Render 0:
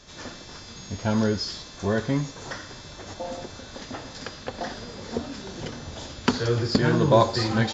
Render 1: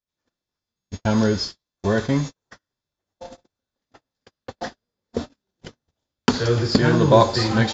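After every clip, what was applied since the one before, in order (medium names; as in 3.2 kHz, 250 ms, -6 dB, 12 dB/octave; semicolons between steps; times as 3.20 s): gate -30 dBFS, range -49 dB; trim +4 dB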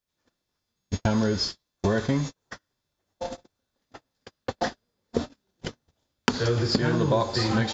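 compression 5:1, threshold -27 dBFS, peak gain reduction 16.5 dB; trim +5.5 dB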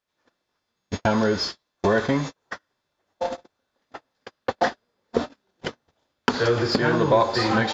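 overdrive pedal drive 16 dB, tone 1.6 kHz, clips at -2 dBFS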